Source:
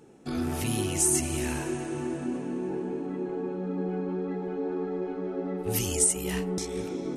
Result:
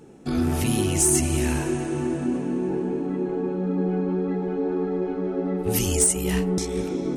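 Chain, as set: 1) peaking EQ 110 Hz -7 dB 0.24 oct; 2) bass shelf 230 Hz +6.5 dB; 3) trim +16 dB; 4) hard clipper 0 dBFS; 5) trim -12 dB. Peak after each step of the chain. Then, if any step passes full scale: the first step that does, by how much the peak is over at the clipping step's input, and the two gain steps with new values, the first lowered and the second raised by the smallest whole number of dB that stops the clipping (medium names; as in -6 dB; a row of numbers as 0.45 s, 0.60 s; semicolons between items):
-9.5 dBFS, -9.0 dBFS, +7.0 dBFS, 0.0 dBFS, -12.0 dBFS; step 3, 7.0 dB; step 3 +9 dB, step 5 -5 dB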